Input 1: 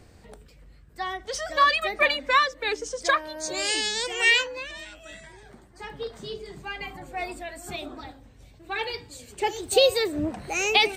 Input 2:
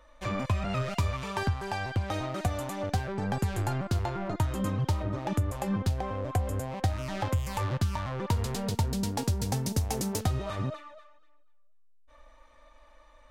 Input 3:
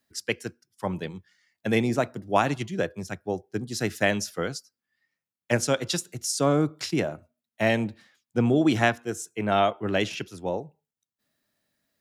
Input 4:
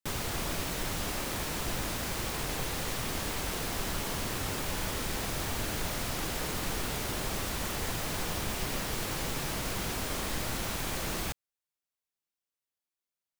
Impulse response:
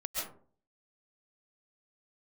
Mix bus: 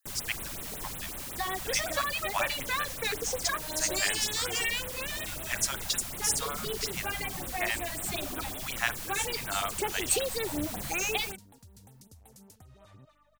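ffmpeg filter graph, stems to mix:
-filter_complex "[0:a]acompressor=threshold=0.0316:ratio=6,adelay=400,volume=1.06[s0];[1:a]alimiter=level_in=1.78:limit=0.0631:level=0:latency=1:release=401,volume=0.562,aeval=exprs='val(0)+0.00141*(sin(2*PI*50*n/s)+sin(2*PI*2*50*n/s)/2+sin(2*PI*3*50*n/s)/3+sin(2*PI*4*50*n/s)/4+sin(2*PI*5*50*n/s)/5)':c=same,adelay=2350,volume=0.15[s1];[2:a]highpass=f=910:w=0.5412,highpass=f=910:w=1.3066,volume=0.596[s2];[3:a]volume=0.376[s3];[s0][s1][s2][s3]amix=inputs=4:normalize=0,highshelf=f=5900:g=10,afftfilt=real='re*(1-between(b*sr/1024,320*pow(6000/320,0.5+0.5*sin(2*PI*5.4*pts/sr))/1.41,320*pow(6000/320,0.5+0.5*sin(2*PI*5.4*pts/sr))*1.41))':imag='im*(1-between(b*sr/1024,320*pow(6000/320,0.5+0.5*sin(2*PI*5.4*pts/sr))/1.41,320*pow(6000/320,0.5+0.5*sin(2*PI*5.4*pts/sr))*1.41))':win_size=1024:overlap=0.75"

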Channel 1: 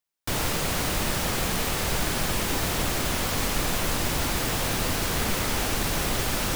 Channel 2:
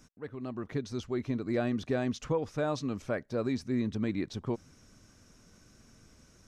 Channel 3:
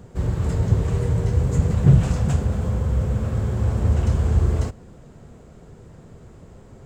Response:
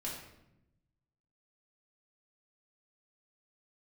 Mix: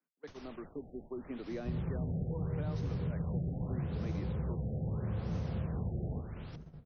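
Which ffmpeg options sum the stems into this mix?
-filter_complex "[0:a]alimiter=limit=0.0668:level=0:latency=1,volume=0.133[s0];[1:a]highpass=f=280:w=0.5412,highpass=f=280:w=1.3066,volume=0.562[s1];[2:a]adelay=1500,volume=0.282,asplit=3[s2][s3][s4];[s3]volume=0.282[s5];[s4]volume=0.158[s6];[s1][s2]amix=inputs=2:normalize=0,equalizer=f=160:t=o:w=0.41:g=14.5,acompressor=threshold=0.0447:ratio=6,volume=1[s7];[3:a]atrim=start_sample=2205[s8];[s5][s8]afir=irnorm=-1:irlink=0[s9];[s6]aecho=0:1:249|498|747|996|1245|1494:1|0.4|0.16|0.064|0.0256|0.0102[s10];[s0][s7][s9][s10]amix=inputs=4:normalize=0,agate=range=0.0794:threshold=0.00501:ratio=16:detection=peak,acrossover=split=120|290|900[s11][s12][s13][s14];[s11]acompressor=threshold=0.0112:ratio=4[s15];[s12]acompressor=threshold=0.0126:ratio=4[s16];[s13]acompressor=threshold=0.00631:ratio=4[s17];[s14]acompressor=threshold=0.00224:ratio=4[s18];[s15][s16][s17][s18]amix=inputs=4:normalize=0,afftfilt=real='re*lt(b*sr/1024,780*pow(6600/780,0.5+0.5*sin(2*PI*0.79*pts/sr)))':imag='im*lt(b*sr/1024,780*pow(6600/780,0.5+0.5*sin(2*PI*0.79*pts/sr)))':win_size=1024:overlap=0.75"

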